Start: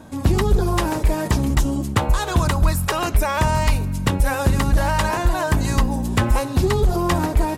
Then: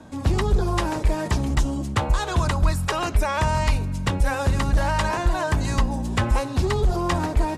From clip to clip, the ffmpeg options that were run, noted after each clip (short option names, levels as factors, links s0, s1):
-filter_complex "[0:a]lowpass=8300,acrossover=split=130|460|3600[s0][s1][s2][s3];[s1]asoftclip=type=tanh:threshold=0.0708[s4];[s0][s4][s2][s3]amix=inputs=4:normalize=0,volume=0.75"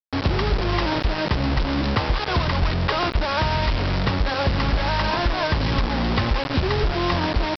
-af "highshelf=f=4100:g=-7.5,acompressor=threshold=0.0631:ratio=4,aresample=11025,acrusher=bits=4:mix=0:aa=0.000001,aresample=44100,volume=1.78"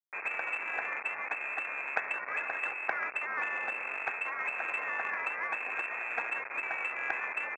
-filter_complex "[0:a]lowpass=f=2300:t=q:w=0.5098,lowpass=f=2300:t=q:w=0.6013,lowpass=f=2300:t=q:w=0.9,lowpass=f=2300:t=q:w=2.563,afreqshift=-2700,aeval=exprs='0.473*(cos(1*acos(clip(val(0)/0.473,-1,1)))-cos(1*PI/2))+0.106*(cos(3*acos(clip(val(0)/0.473,-1,1)))-cos(3*PI/2))':c=same,acrossover=split=310 2100:gain=0.158 1 0.0708[s0][s1][s2];[s0][s1][s2]amix=inputs=3:normalize=0"